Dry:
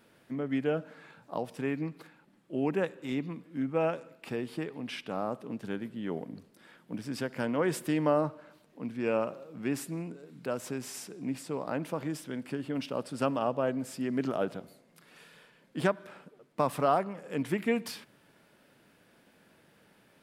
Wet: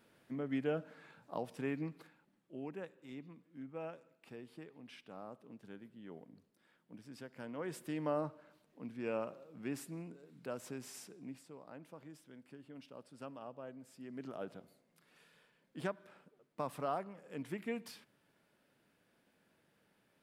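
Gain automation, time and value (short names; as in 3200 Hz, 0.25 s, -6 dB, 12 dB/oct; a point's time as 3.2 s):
1.91 s -6 dB
2.73 s -16 dB
7.33 s -16 dB
8.19 s -9 dB
11.07 s -9 dB
11.56 s -19 dB
13.85 s -19 dB
14.58 s -11.5 dB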